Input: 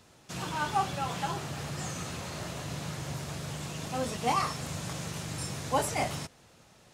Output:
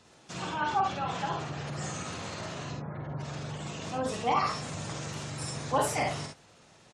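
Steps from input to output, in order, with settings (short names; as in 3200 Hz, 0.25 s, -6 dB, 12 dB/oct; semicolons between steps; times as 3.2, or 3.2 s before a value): 2.74–3.19 LPF 1200 Hz -> 3000 Hz 6 dB/oct; spectral gate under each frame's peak -25 dB strong; low shelf 110 Hz -7.5 dB; early reflections 49 ms -5 dB, 68 ms -7 dB; Doppler distortion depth 0.13 ms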